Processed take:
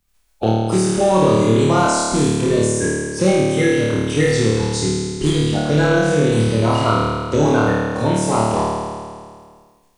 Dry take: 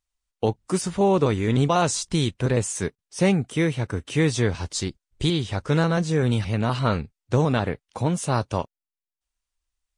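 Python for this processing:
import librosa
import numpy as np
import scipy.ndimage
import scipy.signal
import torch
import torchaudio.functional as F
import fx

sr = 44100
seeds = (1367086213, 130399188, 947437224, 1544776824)

p1 = fx.spec_quant(x, sr, step_db=30)
p2 = np.clip(p1, -10.0 ** (-17.5 / 20.0), 10.0 ** (-17.5 / 20.0))
p3 = p1 + F.gain(torch.from_numpy(p2), -7.0).numpy()
p4 = fx.room_flutter(p3, sr, wall_m=4.6, rt60_s=1.4)
p5 = fx.band_squash(p4, sr, depth_pct=40)
y = F.gain(torch.from_numpy(p5), -1.5).numpy()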